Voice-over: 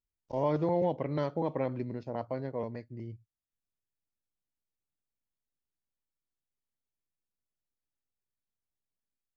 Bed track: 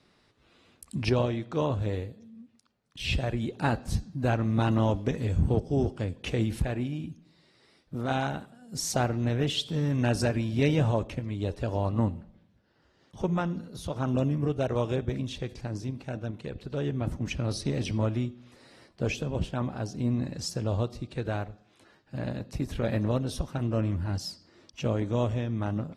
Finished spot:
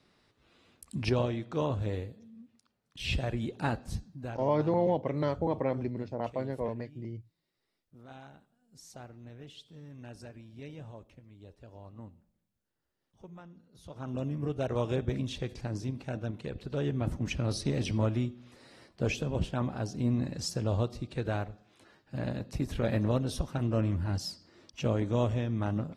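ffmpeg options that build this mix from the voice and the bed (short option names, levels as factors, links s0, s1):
-filter_complex "[0:a]adelay=4050,volume=1.19[s0];[1:a]volume=7.08,afade=t=out:st=3.52:d=0.96:silence=0.125893,afade=t=in:st=13.66:d=1.42:silence=0.1[s1];[s0][s1]amix=inputs=2:normalize=0"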